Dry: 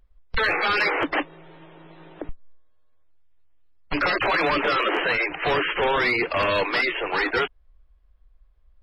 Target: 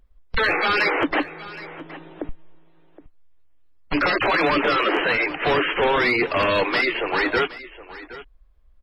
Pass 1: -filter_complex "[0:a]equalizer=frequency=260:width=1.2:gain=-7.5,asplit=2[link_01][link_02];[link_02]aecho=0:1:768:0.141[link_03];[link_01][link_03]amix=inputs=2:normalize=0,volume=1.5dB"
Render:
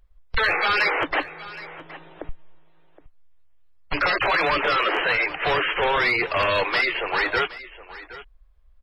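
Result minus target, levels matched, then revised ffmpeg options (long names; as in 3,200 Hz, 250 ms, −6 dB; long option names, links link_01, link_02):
250 Hz band −8.0 dB
-filter_complex "[0:a]equalizer=frequency=260:width=1.2:gain=4,asplit=2[link_01][link_02];[link_02]aecho=0:1:768:0.141[link_03];[link_01][link_03]amix=inputs=2:normalize=0,volume=1.5dB"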